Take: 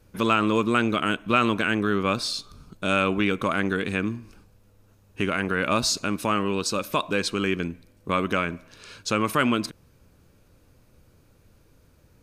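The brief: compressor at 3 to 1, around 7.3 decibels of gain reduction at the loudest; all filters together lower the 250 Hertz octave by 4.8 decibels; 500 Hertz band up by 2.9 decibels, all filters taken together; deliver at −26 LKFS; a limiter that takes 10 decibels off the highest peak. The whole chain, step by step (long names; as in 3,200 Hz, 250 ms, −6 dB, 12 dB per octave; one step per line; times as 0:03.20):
parametric band 250 Hz −8.5 dB
parametric band 500 Hz +6 dB
downward compressor 3 to 1, threshold −26 dBFS
level +9 dB
brickwall limiter −15 dBFS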